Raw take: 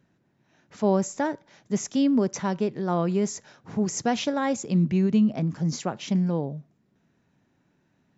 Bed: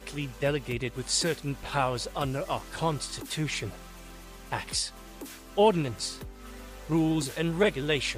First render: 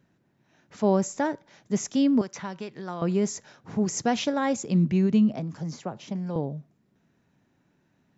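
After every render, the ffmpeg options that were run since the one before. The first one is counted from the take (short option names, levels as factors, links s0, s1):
-filter_complex "[0:a]asettb=1/sr,asplit=3[s0][s1][s2];[s0]atrim=end=2.214[s3];[s1]atrim=start=2.21:end=3.02,asetpts=PTS-STARTPTS,afade=t=in:d=0.004:c=qsin,afade=t=out:st=0.806:d=0.004:c=qsin,acrossover=split=920|4600[s4][s5][s6];[s4]acompressor=threshold=0.0158:ratio=4[s7];[s5]acompressor=threshold=0.0141:ratio=4[s8];[s6]acompressor=threshold=0.00355:ratio=4[s9];[s7][s8][s9]amix=inputs=3:normalize=0[s10];[s2]atrim=start=3.016[s11];[s3][s10]acrossfade=d=0.004:c1=hsin:c2=qsin[s12];[s12][s11]acrossfade=d=0.004:c1=qsin:c2=hsin,asettb=1/sr,asplit=3[s13][s14][s15];[s13]atrim=end=5.364[s16];[s14]atrim=start=5.36:end=6.36,asetpts=PTS-STARTPTS,afade=t=in:d=0.004:c=qsin,afade=t=out:st=0.996:d=0.004:c=qsin,acrossover=split=160|460|1200|3100[s17][s18][s19][s20][s21];[s17]acompressor=threshold=0.0141:ratio=3[s22];[s18]acompressor=threshold=0.01:ratio=3[s23];[s19]acompressor=threshold=0.0224:ratio=3[s24];[s20]acompressor=threshold=0.00141:ratio=3[s25];[s21]acompressor=threshold=0.00282:ratio=3[s26];[s22][s23][s24][s25][s26]amix=inputs=5:normalize=0[s27];[s15]atrim=start=6.356[s28];[s16][s27]acrossfade=d=0.004:c1=hsin:c2=qsin[s29];[s29][s28]acrossfade=d=0.004:c1=qsin:c2=hsin"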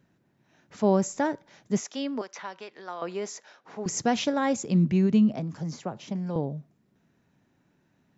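-filter_complex "[0:a]asettb=1/sr,asplit=3[s0][s1][s2];[s0]atrim=end=1.804[s3];[s1]atrim=start=1.8:end=3.86,asetpts=PTS-STARTPTS,afade=t=in:d=0.004:c=qsin,afade=t=out:st=2.056:d=0.004:c=qsin,highpass=510,lowpass=5600[s4];[s2]atrim=start=3.856[s5];[s3][s4]acrossfade=d=0.004:c1=hsin:c2=qsin[s6];[s6][s5]acrossfade=d=0.004:c1=qsin:c2=hsin"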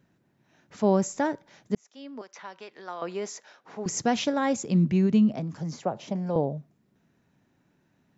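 -filter_complex "[0:a]asettb=1/sr,asplit=3[s0][s1][s2];[s0]atrim=end=5.824[s3];[s1]atrim=start=5.82:end=6.58,asetpts=PTS-STARTPTS,afade=t=in:d=0.004:c=qsin,afade=t=out:st=0.756:d=0.004:c=qsin,equalizer=f=630:w=1.2:g=8[s4];[s2]atrim=start=6.576[s5];[s3][s4]acrossfade=d=0.004:c1=hsin:c2=qsin[s6];[s6][s5]acrossfade=d=0.004:c1=qsin:c2=hsin,asplit=2[s7][s8];[s7]atrim=end=1.75,asetpts=PTS-STARTPTS,afade=t=out:st=1.746:d=0.004:c=hsin[s9];[s8]atrim=start=1.75,asetpts=PTS-STARTPTS,afade=t=in:d=1.09[s10];[s9][s10]concat=n=2:v=0:a=1"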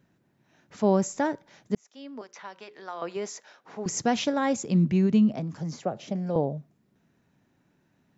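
-filter_complex "[0:a]asettb=1/sr,asplit=3[s0][s1][s2];[s0]atrim=end=2.204[s3];[s1]atrim=start=2.2:end=3.17,asetpts=PTS-STARTPTS,afade=t=in:d=0.004:c=qsin,afade=t=out:st=0.966:d=0.004:c=qsin,bandreject=f=60:t=h:w=6,bandreject=f=120:t=h:w=6,bandreject=f=180:t=h:w=6,bandreject=f=240:t=h:w=6,bandreject=f=300:t=h:w=6,bandreject=f=360:t=h:w=6,bandreject=f=420:t=h:w=6,bandreject=f=480:t=h:w=6,bandreject=f=540:t=h:w=6[s4];[s2]atrim=start=3.166[s5];[s3][s4]acrossfade=d=0.004:c1=hsin:c2=qsin[s6];[s6][s5]acrossfade=d=0.004:c1=qsin:c2=hsin,asettb=1/sr,asplit=3[s7][s8][s9];[s7]atrim=end=5.834[s10];[s8]atrim=start=5.83:end=6.35,asetpts=PTS-STARTPTS,afade=t=in:d=0.004:c=qsin,afade=t=out:st=0.516:d=0.004:c=qsin,equalizer=f=960:t=o:w=0.3:g=-11[s11];[s9]atrim=start=6.346[s12];[s10][s11]acrossfade=d=0.004:c1=hsin:c2=qsin[s13];[s13][s12]acrossfade=d=0.004:c1=qsin:c2=hsin"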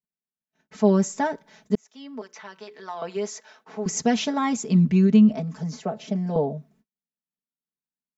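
-af "agate=range=0.01:threshold=0.001:ratio=16:detection=peak,aecho=1:1:4.6:0.92"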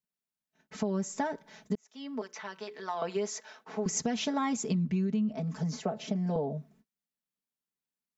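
-af "alimiter=limit=0.178:level=0:latency=1:release=355,acompressor=threshold=0.0398:ratio=4"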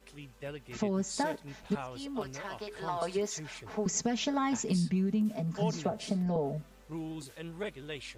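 -filter_complex "[1:a]volume=0.2[s0];[0:a][s0]amix=inputs=2:normalize=0"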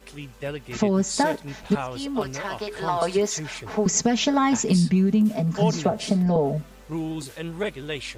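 -af "volume=3.16"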